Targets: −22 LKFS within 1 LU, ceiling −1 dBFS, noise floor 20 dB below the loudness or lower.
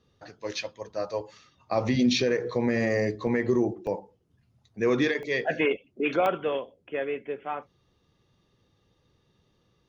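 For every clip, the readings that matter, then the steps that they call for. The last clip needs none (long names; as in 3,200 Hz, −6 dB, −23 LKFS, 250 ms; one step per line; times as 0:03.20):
number of dropouts 4; longest dropout 1.2 ms; integrated loudness −28.0 LKFS; sample peak −13.0 dBFS; target loudness −22.0 LKFS
→ repair the gap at 0:03.27/0:03.87/0:05.23/0:06.26, 1.2 ms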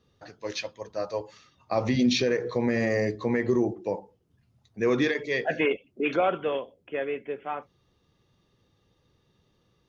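number of dropouts 0; integrated loudness −28.0 LKFS; sample peak −13.0 dBFS; target loudness −22.0 LKFS
→ level +6 dB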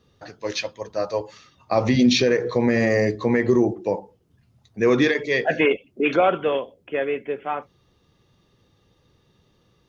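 integrated loudness −22.0 LKFS; sample peak −7.0 dBFS; background noise floor −64 dBFS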